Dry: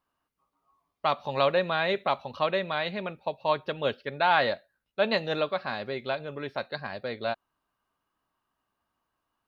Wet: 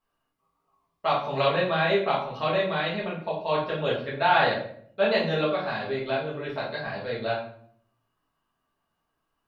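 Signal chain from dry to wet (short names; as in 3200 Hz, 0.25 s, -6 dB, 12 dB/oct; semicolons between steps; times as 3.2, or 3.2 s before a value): shoebox room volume 86 m³, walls mixed, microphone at 1.6 m; gain -5 dB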